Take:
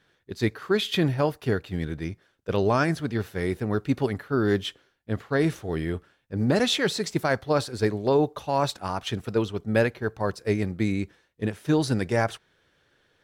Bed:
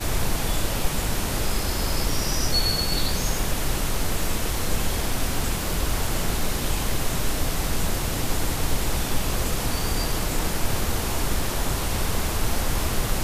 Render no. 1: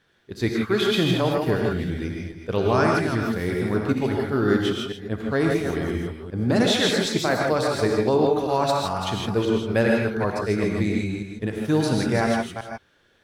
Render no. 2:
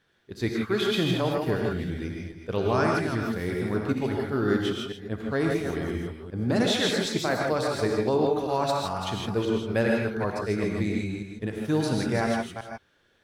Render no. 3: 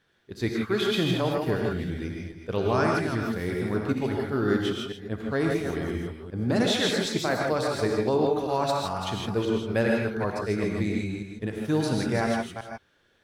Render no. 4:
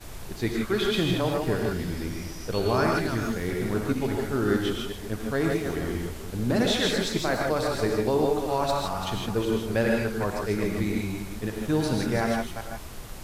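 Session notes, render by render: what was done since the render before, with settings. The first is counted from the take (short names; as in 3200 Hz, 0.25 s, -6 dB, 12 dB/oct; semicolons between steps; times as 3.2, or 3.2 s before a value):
reverse delay 0.197 s, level -7.5 dB; non-linear reverb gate 0.18 s rising, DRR 0 dB
gain -4 dB
nothing audible
add bed -16 dB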